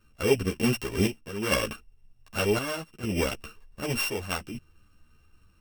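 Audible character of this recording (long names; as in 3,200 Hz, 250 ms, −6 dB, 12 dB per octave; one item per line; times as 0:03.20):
a buzz of ramps at a fixed pitch in blocks of 16 samples
chopped level 0.66 Hz, depth 65%, duty 70%
a shimmering, thickened sound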